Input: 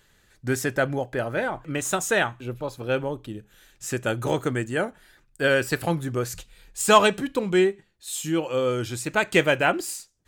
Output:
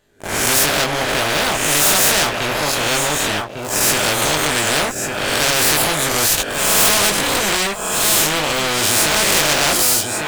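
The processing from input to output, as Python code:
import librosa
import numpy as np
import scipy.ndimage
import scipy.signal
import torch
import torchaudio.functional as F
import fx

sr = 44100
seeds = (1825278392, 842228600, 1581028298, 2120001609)

p1 = fx.spec_swells(x, sr, rise_s=0.65)
p2 = fx.doubler(p1, sr, ms=20.0, db=-3.0)
p3 = fx.leveller(p2, sr, passes=5)
p4 = fx.peak_eq(p3, sr, hz=650.0, db=13.5, octaves=0.58)
p5 = p4 + fx.echo_single(p4, sr, ms=1151, db=-14.5, dry=0)
p6 = fx.spectral_comp(p5, sr, ratio=4.0)
y = F.gain(torch.from_numpy(p6), -14.0).numpy()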